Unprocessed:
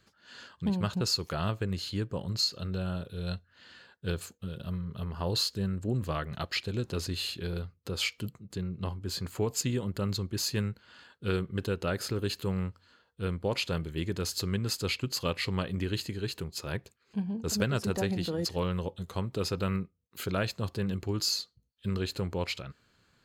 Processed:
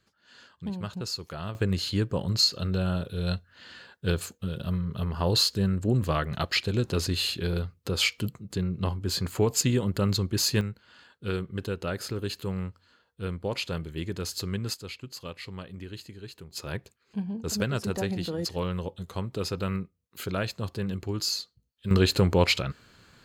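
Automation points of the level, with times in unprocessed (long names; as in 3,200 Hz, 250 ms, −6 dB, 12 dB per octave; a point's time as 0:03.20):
−4.5 dB
from 0:01.55 +6 dB
from 0:10.61 −0.5 dB
from 0:14.74 −8.5 dB
from 0:16.51 +0.5 dB
from 0:21.91 +11 dB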